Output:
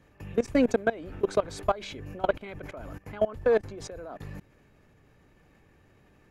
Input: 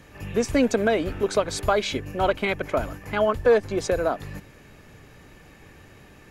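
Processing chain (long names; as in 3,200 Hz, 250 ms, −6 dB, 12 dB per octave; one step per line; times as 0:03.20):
high-shelf EQ 2,000 Hz −7 dB
output level in coarse steps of 20 dB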